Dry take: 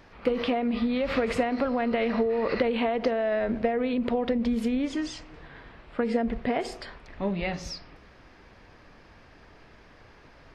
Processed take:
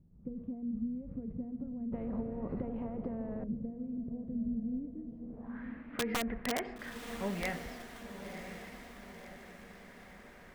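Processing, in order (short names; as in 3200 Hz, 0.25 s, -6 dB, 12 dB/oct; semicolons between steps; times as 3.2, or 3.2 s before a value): low-pass sweep 170 Hz -> 1900 Hz, 5.06–5.64; wrapped overs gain 17 dB; diffused feedback echo 1.041 s, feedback 53%, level -8.5 dB; 1.92–3.44 spectral compressor 2:1; gain -8.5 dB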